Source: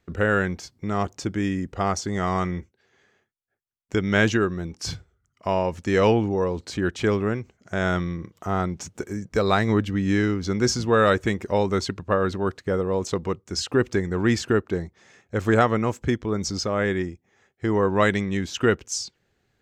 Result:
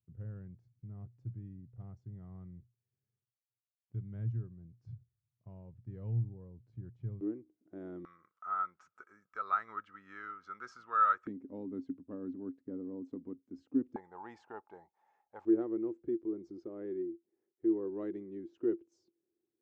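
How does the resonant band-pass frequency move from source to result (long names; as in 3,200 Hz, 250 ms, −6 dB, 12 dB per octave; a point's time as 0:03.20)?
resonant band-pass, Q 15
120 Hz
from 0:07.21 310 Hz
from 0:08.05 1,300 Hz
from 0:11.27 270 Hz
from 0:13.96 850 Hz
from 0:15.45 340 Hz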